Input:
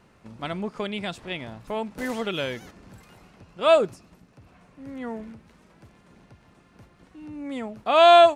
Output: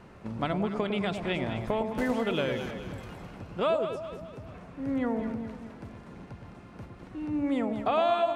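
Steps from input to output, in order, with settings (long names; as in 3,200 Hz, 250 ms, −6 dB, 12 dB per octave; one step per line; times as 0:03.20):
high-shelf EQ 3,100 Hz −9.5 dB
downward compressor 6 to 1, threshold −33 dBFS, peak gain reduction 20 dB
delay that swaps between a low-pass and a high-pass 106 ms, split 860 Hz, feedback 68%, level −5.5 dB
level +7 dB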